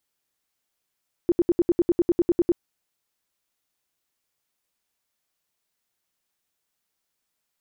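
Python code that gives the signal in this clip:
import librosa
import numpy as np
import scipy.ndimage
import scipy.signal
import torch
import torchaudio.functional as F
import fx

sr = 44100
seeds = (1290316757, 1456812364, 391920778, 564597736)

y = fx.tone_burst(sr, hz=346.0, cycles=10, every_s=0.1, bursts=13, level_db=-14.5)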